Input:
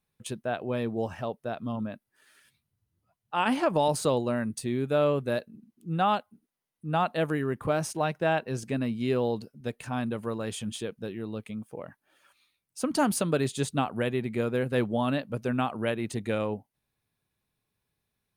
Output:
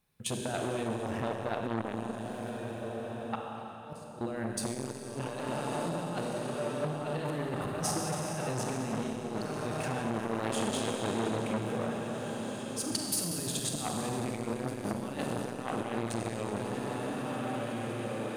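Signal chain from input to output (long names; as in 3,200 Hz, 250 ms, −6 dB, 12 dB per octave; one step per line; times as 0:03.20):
feedback delay with all-pass diffusion 1,877 ms, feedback 41%, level −12.5 dB
compressor whose output falls as the input rises −32 dBFS, ratio −0.5
0:03.35–0:04.21: gate with flip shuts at −30 dBFS, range −29 dB
four-comb reverb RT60 3.4 s, combs from 31 ms, DRR 0 dB
saturating transformer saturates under 1,400 Hz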